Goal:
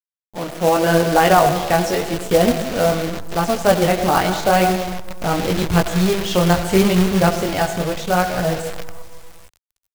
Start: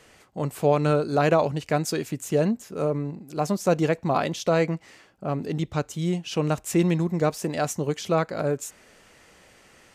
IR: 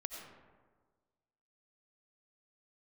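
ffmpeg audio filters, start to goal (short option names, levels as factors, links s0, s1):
-filter_complex "[0:a]agate=range=0.0224:threshold=0.00631:ratio=3:detection=peak,asplit=2[s0][s1];[1:a]atrim=start_sample=2205,highshelf=f=3700:g=-7[s2];[s1][s2]afir=irnorm=-1:irlink=0,volume=1.5[s3];[s0][s3]amix=inputs=2:normalize=0,flanger=delay=18:depth=7.6:speed=0.84,acrusher=bits=6:dc=4:mix=0:aa=0.000001,bass=f=250:g=-2,treble=f=4000:g=6,asetrate=49501,aresample=44100,atempo=0.890899,acrossover=split=4900[s4][s5];[s5]acompressor=threshold=0.00708:ratio=4:attack=1:release=60[s6];[s4][s6]amix=inputs=2:normalize=0,acrusher=bits=3:mode=log:mix=0:aa=0.000001,asubboost=boost=7:cutoff=89,dynaudnorm=f=150:g=9:m=4.47,volume=0.891"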